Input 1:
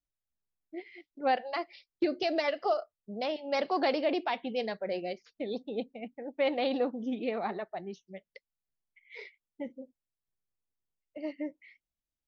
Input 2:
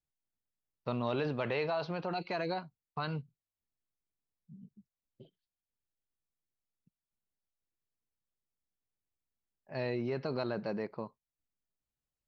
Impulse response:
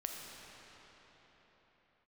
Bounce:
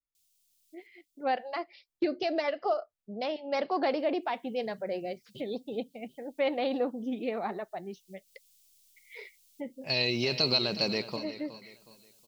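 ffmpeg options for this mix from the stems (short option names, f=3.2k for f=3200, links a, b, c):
-filter_complex "[0:a]adynamicequalizer=threshold=0.00501:dfrequency=2000:dqfactor=0.7:tfrequency=2000:tqfactor=0.7:attack=5:release=100:ratio=0.375:range=3:mode=cutabove:tftype=highshelf,volume=-8dB,asplit=2[a][b];[1:a]alimiter=level_in=5.5dB:limit=-24dB:level=0:latency=1:release=457,volume=-5.5dB,aexciter=amount=6.4:drive=8.8:freq=2.5k,adelay=150,volume=0dB,asplit=3[c][d][e];[c]atrim=end=0.87,asetpts=PTS-STARTPTS,afade=t=out:st=0.866:d=0.004:c=hsin[f];[d]atrim=start=0.87:end=3.86,asetpts=PTS-STARTPTS,volume=0[g];[e]atrim=start=3.86,asetpts=PTS-STARTPTS,afade=t=in:d=0.004:c=hsin[h];[f][g][h]concat=n=3:v=0:a=1,asplit=2[i][j];[j]volume=-14dB[k];[b]apad=whole_len=547952[l];[i][l]sidechaincompress=threshold=-52dB:ratio=8:attack=10:release=390[m];[k]aecho=0:1:367|734|1101|1468|1835:1|0.35|0.122|0.0429|0.015[n];[a][m][n]amix=inputs=3:normalize=0,dynaudnorm=f=130:g=17:m=8dB"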